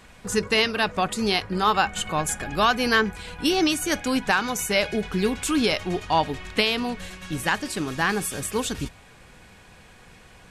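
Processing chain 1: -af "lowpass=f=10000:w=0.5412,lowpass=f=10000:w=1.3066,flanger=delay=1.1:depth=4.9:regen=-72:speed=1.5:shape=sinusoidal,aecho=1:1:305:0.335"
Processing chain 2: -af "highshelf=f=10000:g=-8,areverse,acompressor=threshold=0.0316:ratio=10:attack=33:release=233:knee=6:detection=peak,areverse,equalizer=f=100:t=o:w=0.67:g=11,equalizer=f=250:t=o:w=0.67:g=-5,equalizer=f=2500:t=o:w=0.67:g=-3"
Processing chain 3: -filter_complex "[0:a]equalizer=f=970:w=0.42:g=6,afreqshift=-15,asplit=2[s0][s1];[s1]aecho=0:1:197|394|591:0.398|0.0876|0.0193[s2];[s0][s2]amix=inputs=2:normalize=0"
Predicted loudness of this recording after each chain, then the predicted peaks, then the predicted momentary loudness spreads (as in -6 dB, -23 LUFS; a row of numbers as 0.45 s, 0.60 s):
-28.0 LUFS, -33.0 LUFS, -19.5 LUFS; -10.5 dBFS, -16.0 dBFS, -1.0 dBFS; 8 LU, 17 LU, 9 LU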